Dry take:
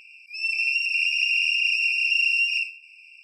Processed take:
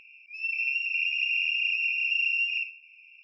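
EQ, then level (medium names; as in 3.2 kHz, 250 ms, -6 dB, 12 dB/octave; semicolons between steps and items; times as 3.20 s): tape spacing loss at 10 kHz 32 dB; treble shelf 6.1 kHz -12 dB; band-stop 4.8 kHz, Q 8; +6.0 dB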